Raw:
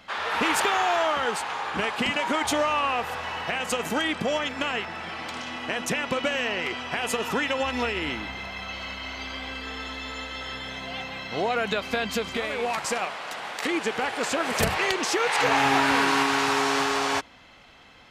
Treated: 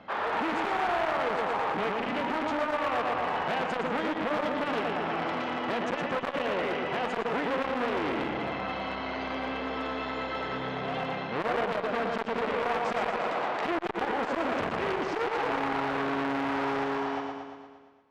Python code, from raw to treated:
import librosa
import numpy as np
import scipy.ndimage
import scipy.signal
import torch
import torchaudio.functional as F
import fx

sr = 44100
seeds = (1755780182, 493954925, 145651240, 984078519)

y = fx.fade_out_tail(x, sr, length_s=3.91)
y = fx.highpass(y, sr, hz=290.0, slope=6)
y = fx.air_absorb(y, sr, metres=150.0)
y = fx.echo_feedback(y, sr, ms=116, feedback_pct=59, wet_db=-4.5)
y = fx.rider(y, sr, range_db=4, speed_s=0.5)
y = fx.tilt_shelf(y, sr, db=9.5, hz=1300.0)
y = fx.clip_asym(y, sr, top_db=-22.5, bottom_db=-17.0)
y = fx.transformer_sat(y, sr, knee_hz=1200.0)